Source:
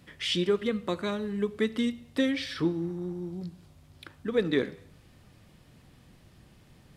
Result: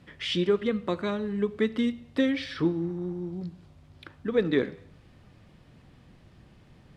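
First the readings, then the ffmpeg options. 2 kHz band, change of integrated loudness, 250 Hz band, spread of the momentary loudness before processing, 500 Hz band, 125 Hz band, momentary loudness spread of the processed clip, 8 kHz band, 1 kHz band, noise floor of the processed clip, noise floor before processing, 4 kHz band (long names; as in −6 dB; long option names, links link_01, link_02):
+0.5 dB, +1.5 dB, +2.0 dB, 10 LU, +2.0 dB, +2.0 dB, 10 LU, can't be measured, +1.5 dB, −57 dBFS, −58 dBFS, −1.5 dB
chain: -af "aemphasis=mode=reproduction:type=50fm,volume=1.5dB"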